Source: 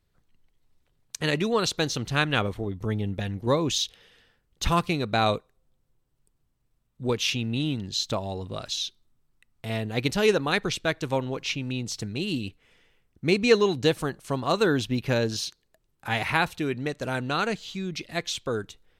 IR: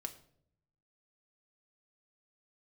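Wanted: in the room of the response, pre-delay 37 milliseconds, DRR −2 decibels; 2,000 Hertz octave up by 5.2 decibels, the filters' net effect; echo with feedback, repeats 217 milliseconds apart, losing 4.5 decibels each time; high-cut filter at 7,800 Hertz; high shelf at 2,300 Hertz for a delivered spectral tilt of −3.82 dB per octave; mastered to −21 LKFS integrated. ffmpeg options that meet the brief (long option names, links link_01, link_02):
-filter_complex "[0:a]lowpass=7800,equalizer=frequency=2000:width_type=o:gain=4.5,highshelf=frequency=2300:gain=4.5,aecho=1:1:217|434|651|868|1085|1302|1519|1736|1953:0.596|0.357|0.214|0.129|0.0772|0.0463|0.0278|0.0167|0.01,asplit=2[link_01][link_02];[1:a]atrim=start_sample=2205,adelay=37[link_03];[link_02][link_03]afir=irnorm=-1:irlink=0,volume=4.5dB[link_04];[link_01][link_04]amix=inputs=2:normalize=0,volume=-2dB"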